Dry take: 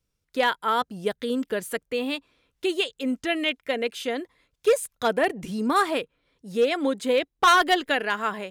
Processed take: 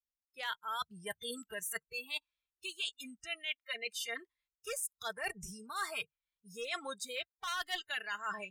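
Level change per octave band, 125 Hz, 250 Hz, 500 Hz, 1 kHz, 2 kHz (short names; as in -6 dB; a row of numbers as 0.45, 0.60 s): -15.5, -25.0, -22.0, -18.0, -12.0 dB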